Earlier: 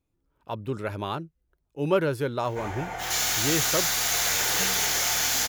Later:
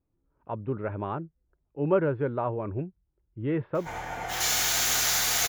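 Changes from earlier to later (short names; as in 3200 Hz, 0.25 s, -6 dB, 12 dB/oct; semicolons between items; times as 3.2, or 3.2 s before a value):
speech: add Gaussian blur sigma 4.5 samples; background: entry +1.30 s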